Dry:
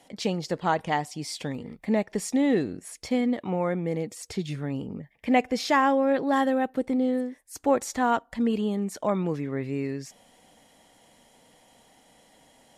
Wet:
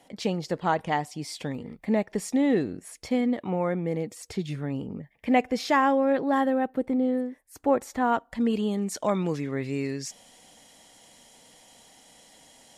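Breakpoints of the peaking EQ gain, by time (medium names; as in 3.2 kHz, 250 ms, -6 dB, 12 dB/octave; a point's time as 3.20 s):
peaking EQ 6.2 kHz 2.2 oct
6.08 s -3 dB
6.49 s -9.5 dB
8.01 s -9.5 dB
8.47 s +1.5 dB
9.20 s +9 dB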